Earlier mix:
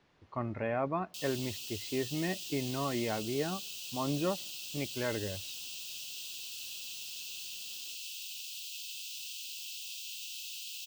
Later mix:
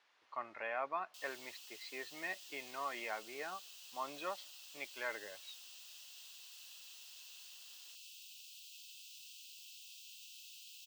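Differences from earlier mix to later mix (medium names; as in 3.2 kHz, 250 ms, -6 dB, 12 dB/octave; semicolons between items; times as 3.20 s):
background -12.0 dB; master: add high-pass 960 Hz 12 dB/octave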